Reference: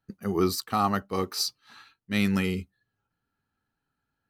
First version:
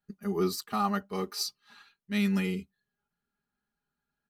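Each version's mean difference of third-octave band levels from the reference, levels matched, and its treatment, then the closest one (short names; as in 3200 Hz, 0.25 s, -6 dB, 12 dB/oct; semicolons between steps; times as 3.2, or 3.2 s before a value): 2.5 dB: comb 4.9 ms, depth 89%; gain -7 dB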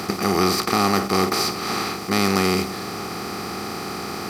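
14.0 dB: per-bin compression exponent 0.2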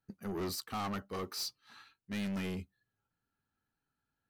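4.0 dB: soft clip -28 dBFS, distortion -7 dB; gain -5.5 dB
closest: first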